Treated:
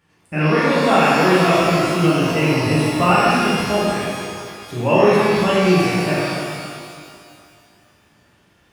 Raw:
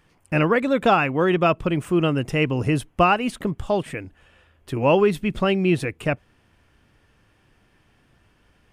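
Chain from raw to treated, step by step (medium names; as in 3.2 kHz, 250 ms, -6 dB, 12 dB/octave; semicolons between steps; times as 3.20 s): high-pass 70 Hz; pitch-shifted reverb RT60 2.1 s, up +12 st, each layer -8 dB, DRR -9.5 dB; trim -5.5 dB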